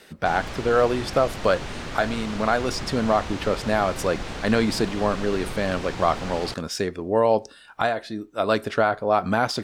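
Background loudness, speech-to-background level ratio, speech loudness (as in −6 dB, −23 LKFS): −34.0 LKFS, 10.0 dB, −24.0 LKFS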